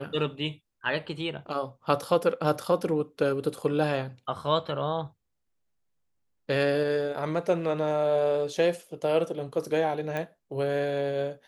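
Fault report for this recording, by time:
10.17 s: pop -19 dBFS

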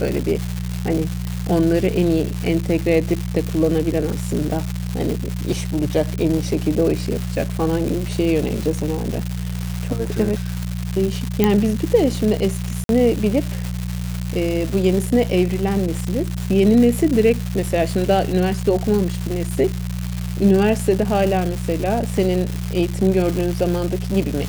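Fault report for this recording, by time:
crackle 390 per s -22 dBFS
hum 60 Hz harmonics 3 -25 dBFS
11.44 s: pop -2 dBFS
12.84–12.89 s: dropout 52 ms

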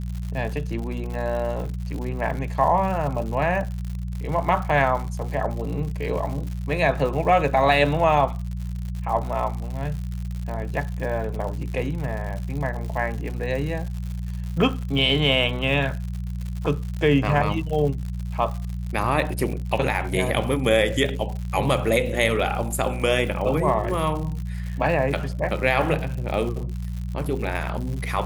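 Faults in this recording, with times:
crackle 130 per s -31 dBFS
hum 60 Hz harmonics 3 -29 dBFS

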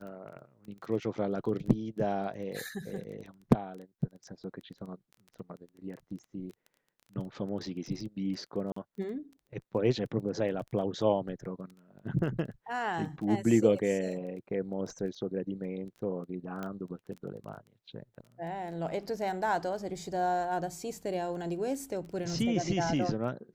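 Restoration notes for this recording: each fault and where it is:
crackle 13 per s -41 dBFS
8.72–8.76 s: dropout 44 ms
16.63 s: pop -24 dBFS

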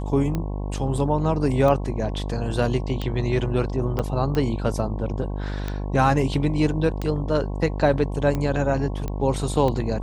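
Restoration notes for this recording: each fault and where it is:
buzz 50 Hz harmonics 22 -28 dBFS
tick 45 rpm -14 dBFS
3.99–4.00 s: dropout 7 ms
9.08 s: pop -16 dBFS

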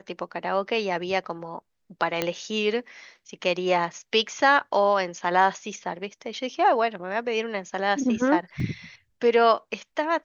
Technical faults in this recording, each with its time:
2.22 s: pop -9 dBFS
8.60 s: dropout 2.2 ms

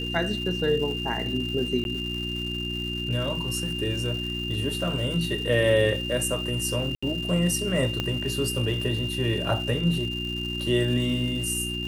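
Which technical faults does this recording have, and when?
crackle 490 per s -36 dBFS
hum 60 Hz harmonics 6 -33 dBFS
whine 2.8 kHz -31 dBFS
1.84–1.85 s: dropout
6.95–7.03 s: dropout 75 ms
8.00 s: pop -13 dBFS

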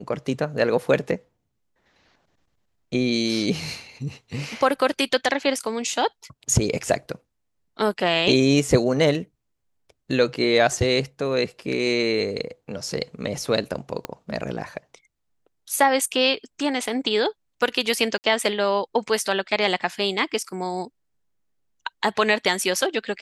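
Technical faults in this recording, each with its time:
14.05 s: pop -13 dBFS
18.18–18.24 s: dropout 59 ms

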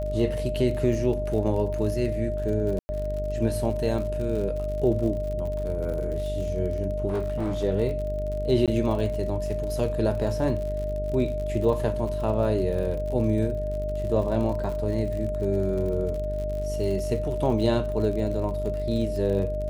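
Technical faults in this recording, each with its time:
buzz 50 Hz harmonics 13 -31 dBFS
crackle 58 per s -33 dBFS
whine 610 Hz -29 dBFS
2.79–2.89 s: dropout 100 ms
7.09–7.64 s: clipped -23 dBFS
8.66–8.68 s: dropout 17 ms

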